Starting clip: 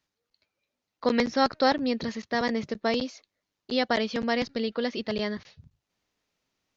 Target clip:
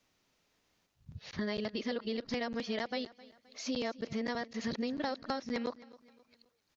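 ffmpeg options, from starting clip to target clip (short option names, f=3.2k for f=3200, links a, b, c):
-filter_complex "[0:a]areverse,acompressor=threshold=-37dB:ratio=12,asplit=2[a][b];[b]aecho=0:1:262|524|786:0.1|0.041|0.0168[c];[a][c]amix=inputs=2:normalize=0,volume=4.5dB"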